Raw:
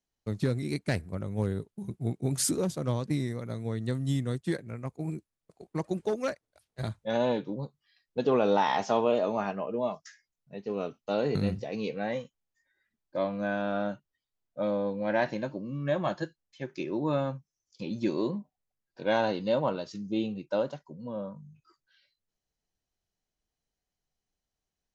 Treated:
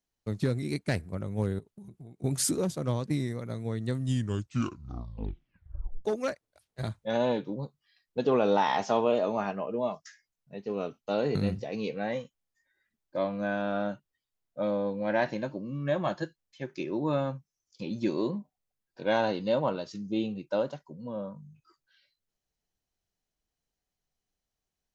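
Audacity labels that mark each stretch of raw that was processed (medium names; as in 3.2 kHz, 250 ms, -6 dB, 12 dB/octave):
1.590000	2.240000	compression 12:1, threshold -43 dBFS
3.980000	3.980000	tape stop 2.07 s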